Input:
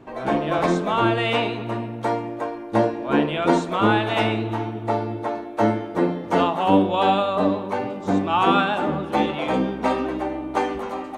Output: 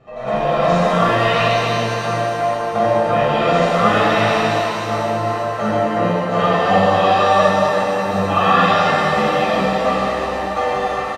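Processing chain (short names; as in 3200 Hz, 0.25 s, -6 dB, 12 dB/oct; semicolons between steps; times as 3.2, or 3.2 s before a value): LPF 6500 Hz 12 dB/oct; notches 60/120 Hz; comb 1.6 ms, depth 83%; shimmer reverb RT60 2.6 s, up +7 st, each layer -8 dB, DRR -8.5 dB; gain -5.5 dB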